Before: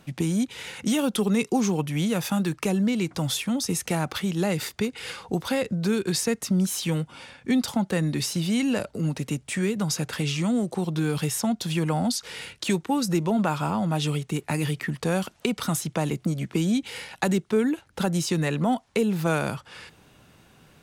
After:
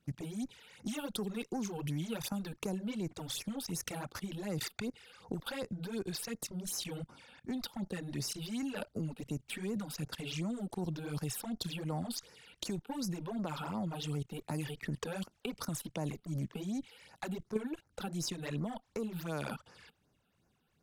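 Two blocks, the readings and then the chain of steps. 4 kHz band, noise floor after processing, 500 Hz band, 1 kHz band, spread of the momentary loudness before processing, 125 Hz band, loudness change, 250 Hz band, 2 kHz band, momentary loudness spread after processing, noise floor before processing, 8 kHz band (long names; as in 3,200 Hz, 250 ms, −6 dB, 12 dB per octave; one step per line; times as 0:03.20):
−11.0 dB, −76 dBFS, −14.0 dB, −14.5 dB, 6 LU, −13.0 dB, −13.5 dB, −14.0 dB, −14.0 dB, 5 LU, −58 dBFS, −12.0 dB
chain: harmonic generator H 4 −23 dB, 7 −24 dB, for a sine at −9 dBFS
output level in coarse steps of 19 dB
all-pass phaser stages 12, 2.7 Hz, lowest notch 100–3,400 Hz
level +2 dB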